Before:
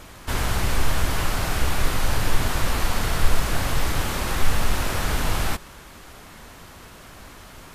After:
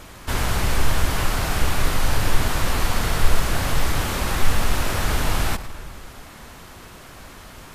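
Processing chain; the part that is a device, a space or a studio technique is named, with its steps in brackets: saturated reverb return (on a send at -10.5 dB: reverberation RT60 1.6 s, pre-delay 88 ms + saturation -17.5 dBFS, distortion -8 dB); on the sum: trim +1.5 dB

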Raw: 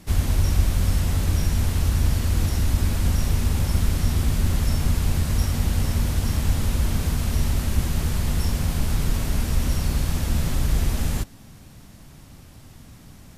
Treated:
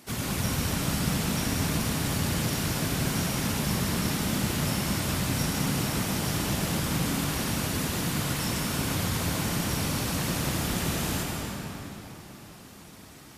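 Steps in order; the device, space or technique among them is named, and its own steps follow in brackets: whispering ghost (whisper effect; high-pass 470 Hz 6 dB/octave; reverberation RT60 3.9 s, pre-delay 89 ms, DRR -1.5 dB)

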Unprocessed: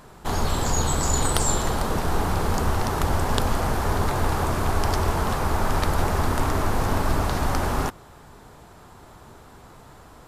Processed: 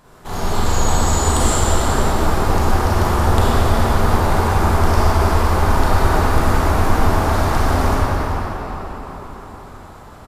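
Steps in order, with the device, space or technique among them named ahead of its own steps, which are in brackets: cave (delay 390 ms -12 dB; reverberation RT60 4.8 s, pre-delay 30 ms, DRR -11 dB); trim -4.5 dB

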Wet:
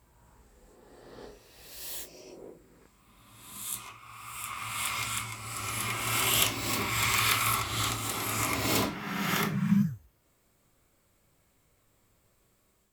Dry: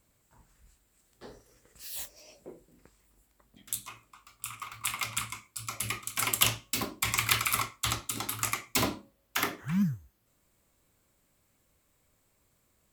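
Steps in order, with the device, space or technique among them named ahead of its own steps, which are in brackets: reverse reverb (reverse; reverberation RT60 2.3 s, pre-delay 15 ms, DRR -5.5 dB; reverse); trim -3.5 dB

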